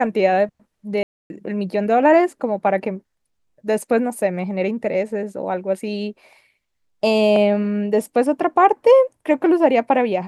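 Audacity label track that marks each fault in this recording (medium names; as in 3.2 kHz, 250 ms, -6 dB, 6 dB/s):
1.030000	1.300000	dropout 271 ms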